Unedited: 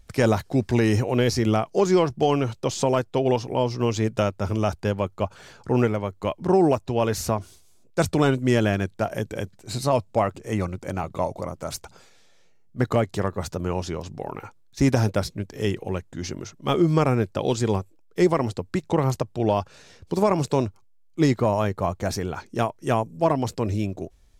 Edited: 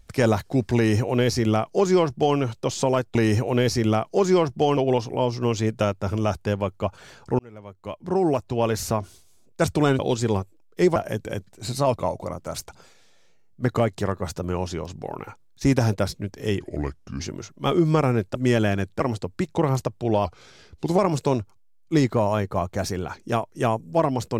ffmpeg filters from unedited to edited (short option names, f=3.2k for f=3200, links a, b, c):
-filter_complex "[0:a]asplit=13[a][b][c][d][e][f][g][h][i][j][k][l][m];[a]atrim=end=3.152[n];[b]atrim=start=0.758:end=2.382[o];[c]atrim=start=3.148:end=5.77,asetpts=PTS-STARTPTS,afade=t=out:st=2.618:d=0.004:c=hsin[p];[d]atrim=start=5.77:end=8.372,asetpts=PTS-STARTPTS,afade=t=in:d=1.2[q];[e]atrim=start=17.378:end=18.352[r];[f]atrim=start=9.018:end=10.022[s];[g]atrim=start=11.118:end=15.764[t];[h]atrim=start=15.76:end=16.23,asetpts=PTS-STARTPTS,asetrate=34398,aresample=44100,atrim=end_sample=26573,asetpts=PTS-STARTPTS[u];[i]atrim=start=16.226:end=17.382[v];[j]atrim=start=8.368:end=9.022[w];[k]atrim=start=18.348:end=19.594[x];[l]atrim=start=19.59:end=20.25,asetpts=PTS-STARTPTS,asetrate=39249,aresample=44100,atrim=end_sample=32703,asetpts=PTS-STARTPTS[y];[m]atrim=start=20.246[z];[n][o]acrossfade=d=0.004:c1=hsin:c2=hsin[aa];[p][q]concat=n=2:v=0:a=1[ab];[aa][ab]acrossfade=d=0.004:c1=hsin:c2=hsin[ac];[ac][r]acrossfade=d=0.004:c1=hsin:c2=hsin[ad];[ad][s]acrossfade=d=0.004:c1=hsin:c2=hsin[ae];[ae][t]acrossfade=d=0.004:c1=hsin:c2=hsin[af];[af][u]acrossfade=d=0.004:c1=hsin:c2=hsin[ag];[ag][v]acrossfade=d=0.004:c1=hsin:c2=hsin[ah];[ah][w]acrossfade=d=0.004:c1=hsin:c2=hsin[ai];[ai][x]acrossfade=d=0.004:c1=hsin:c2=hsin[aj];[aj][y]acrossfade=d=0.004:c1=hsin:c2=hsin[ak];[ak][z]acrossfade=d=0.004:c1=hsin:c2=hsin"